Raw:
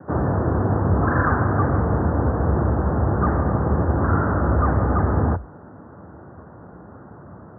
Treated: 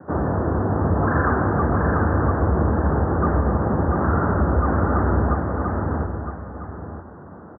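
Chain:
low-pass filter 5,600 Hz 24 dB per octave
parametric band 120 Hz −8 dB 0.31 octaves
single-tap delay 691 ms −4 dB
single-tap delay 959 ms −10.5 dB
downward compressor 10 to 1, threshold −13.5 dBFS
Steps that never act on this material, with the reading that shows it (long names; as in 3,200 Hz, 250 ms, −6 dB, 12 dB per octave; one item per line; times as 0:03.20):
low-pass filter 5,600 Hz: nothing at its input above 1,500 Hz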